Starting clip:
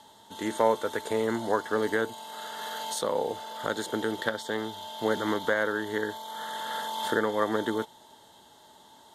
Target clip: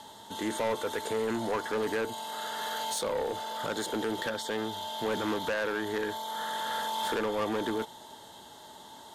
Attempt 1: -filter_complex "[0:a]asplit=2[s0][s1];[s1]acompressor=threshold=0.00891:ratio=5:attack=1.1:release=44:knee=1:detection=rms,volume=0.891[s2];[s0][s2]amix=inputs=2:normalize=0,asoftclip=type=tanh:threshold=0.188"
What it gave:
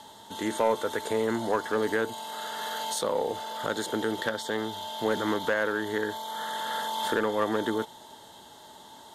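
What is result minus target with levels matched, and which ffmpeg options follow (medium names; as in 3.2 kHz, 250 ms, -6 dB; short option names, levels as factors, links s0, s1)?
saturation: distortion -11 dB
-filter_complex "[0:a]asplit=2[s0][s1];[s1]acompressor=threshold=0.00891:ratio=5:attack=1.1:release=44:knee=1:detection=rms,volume=0.891[s2];[s0][s2]amix=inputs=2:normalize=0,asoftclip=type=tanh:threshold=0.0562"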